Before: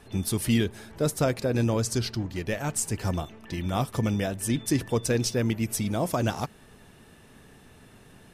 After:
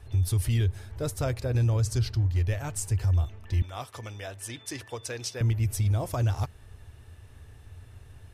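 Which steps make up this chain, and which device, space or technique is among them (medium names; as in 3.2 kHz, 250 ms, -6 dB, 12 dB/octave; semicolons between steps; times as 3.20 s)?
car stereo with a boomy subwoofer (resonant low shelf 130 Hz +12 dB, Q 3; peak limiter -13 dBFS, peak gain reduction 8 dB); 3.62–5.41 s: frequency weighting A; trim -5 dB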